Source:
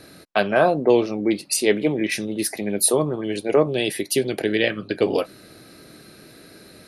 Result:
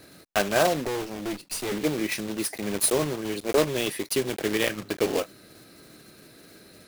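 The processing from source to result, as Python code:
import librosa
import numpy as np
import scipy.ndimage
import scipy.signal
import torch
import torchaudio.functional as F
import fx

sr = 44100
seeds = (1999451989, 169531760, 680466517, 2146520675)

y = fx.block_float(x, sr, bits=3)
y = fx.tube_stage(y, sr, drive_db=21.0, bias=0.7, at=(0.87, 1.72))
y = F.gain(torch.from_numpy(y), -5.0).numpy()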